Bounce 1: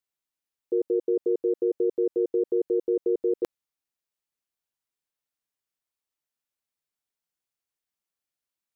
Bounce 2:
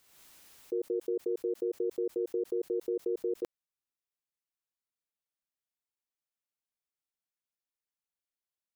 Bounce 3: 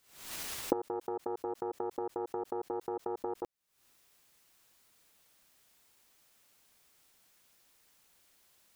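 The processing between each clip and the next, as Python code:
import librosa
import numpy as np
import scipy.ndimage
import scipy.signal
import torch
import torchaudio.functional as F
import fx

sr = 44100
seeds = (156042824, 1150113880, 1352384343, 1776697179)

y1 = fx.pre_swell(x, sr, db_per_s=51.0)
y1 = y1 * 10.0 ** (-8.0 / 20.0)
y2 = fx.self_delay(y1, sr, depth_ms=0.47)
y2 = fx.recorder_agc(y2, sr, target_db=-26.0, rise_db_per_s=74.0, max_gain_db=30)
y2 = y2 * 10.0 ** (-3.5 / 20.0)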